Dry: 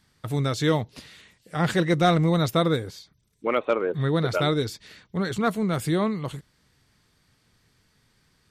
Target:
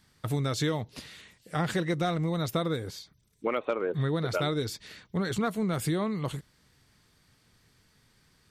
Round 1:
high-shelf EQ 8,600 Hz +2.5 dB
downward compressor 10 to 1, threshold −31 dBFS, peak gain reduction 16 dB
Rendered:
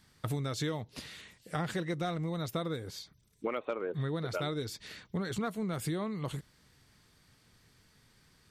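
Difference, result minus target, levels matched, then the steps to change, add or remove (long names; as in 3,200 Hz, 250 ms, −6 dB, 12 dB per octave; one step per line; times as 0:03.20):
downward compressor: peak gain reduction +6 dB
change: downward compressor 10 to 1, threshold −24.5 dBFS, peak gain reduction 10 dB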